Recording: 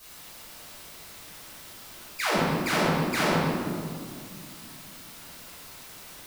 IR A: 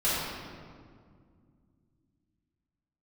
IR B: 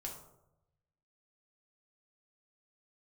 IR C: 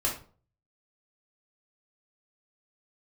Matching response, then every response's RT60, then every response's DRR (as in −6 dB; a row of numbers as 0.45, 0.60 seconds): A; 2.1, 0.85, 0.40 seconds; −11.0, −1.0, −3.5 decibels